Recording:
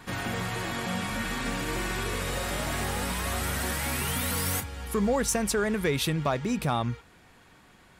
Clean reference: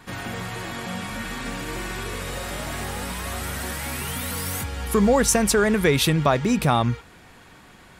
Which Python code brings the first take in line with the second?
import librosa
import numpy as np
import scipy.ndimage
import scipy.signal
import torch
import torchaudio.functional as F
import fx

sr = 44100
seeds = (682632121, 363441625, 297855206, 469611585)

y = fx.fix_declip(x, sr, threshold_db=-18.0)
y = fx.gain(y, sr, db=fx.steps((0.0, 0.0), (4.6, 7.5)))